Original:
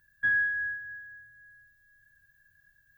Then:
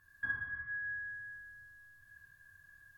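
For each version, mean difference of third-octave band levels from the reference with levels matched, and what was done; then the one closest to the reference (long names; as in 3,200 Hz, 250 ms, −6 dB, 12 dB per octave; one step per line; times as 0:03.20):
5.0 dB: treble cut that deepens with the level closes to 950 Hz, closed at −24.5 dBFS
parametric band 1,100 Hz +14 dB 0.25 octaves
downward compressor 1.5 to 1, threshold −44 dBFS, peak gain reduction 7 dB
reverb whose tail is shaped and stops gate 380 ms falling, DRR −4 dB
level −1.5 dB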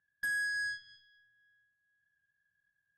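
3.5 dB: in parallel at −5 dB: soft clipping −29.5 dBFS, distortion −10 dB
on the sum: band-pass filter 130–3,000 Hz
downward compressor 6 to 1, threshold −27 dBFS, peak gain reduction 5.5 dB
harmonic generator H 7 −15 dB, 8 −29 dB, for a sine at −22.5 dBFS
level −6 dB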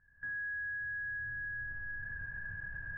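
7.0 dB: camcorder AGC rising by 39 dB per second
low-pass filter 1,700 Hz 24 dB per octave
low-shelf EQ 71 Hz +8 dB
brickwall limiter −32.5 dBFS, peak gain reduction 10.5 dB
level −2.5 dB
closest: second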